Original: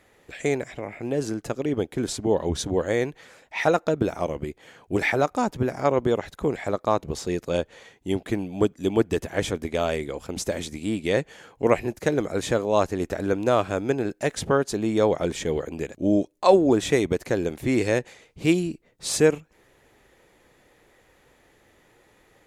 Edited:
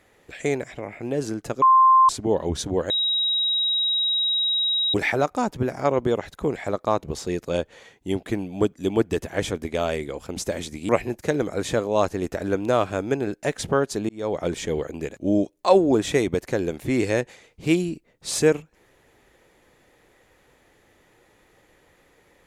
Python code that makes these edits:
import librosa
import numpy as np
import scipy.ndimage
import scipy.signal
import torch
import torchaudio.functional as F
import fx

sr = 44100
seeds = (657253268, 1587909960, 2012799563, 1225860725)

y = fx.edit(x, sr, fx.bleep(start_s=1.62, length_s=0.47, hz=1050.0, db=-11.0),
    fx.bleep(start_s=2.9, length_s=2.04, hz=3820.0, db=-19.5),
    fx.cut(start_s=10.89, length_s=0.78),
    fx.fade_in_span(start_s=14.87, length_s=0.38), tone=tone)